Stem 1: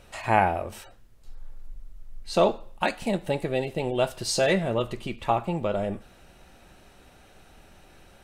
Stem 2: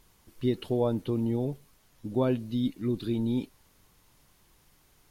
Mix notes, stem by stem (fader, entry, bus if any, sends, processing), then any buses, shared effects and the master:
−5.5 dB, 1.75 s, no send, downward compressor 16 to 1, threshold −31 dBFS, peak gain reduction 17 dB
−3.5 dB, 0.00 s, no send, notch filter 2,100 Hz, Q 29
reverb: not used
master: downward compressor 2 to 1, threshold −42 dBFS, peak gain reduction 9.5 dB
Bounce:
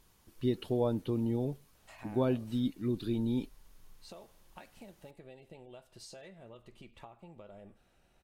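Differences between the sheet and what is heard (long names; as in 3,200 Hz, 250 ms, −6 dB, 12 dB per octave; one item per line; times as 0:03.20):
stem 1 −5.5 dB → −16.5 dB
master: missing downward compressor 2 to 1, threshold −42 dBFS, peak gain reduction 9.5 dB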